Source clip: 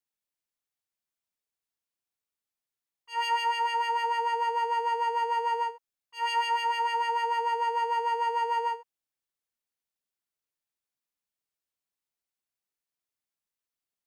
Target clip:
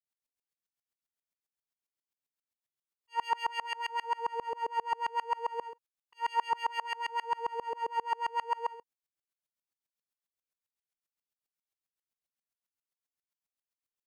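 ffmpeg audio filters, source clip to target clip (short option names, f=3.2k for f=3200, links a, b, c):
-af "aeval=exprs='val(0)*pow(10,-30*if(lt(mod(-7.5*n/s,1),2*abs(-7.5)/1000),1-mod(-7.5*n/s,1)/(2*abs(-7.5)/1000),(mod(-7.5*n/s,1)-2*abs(-7.5)/1000)/(1-2*abs(-7.5)/1000))/20)':c=same,volume=2dB"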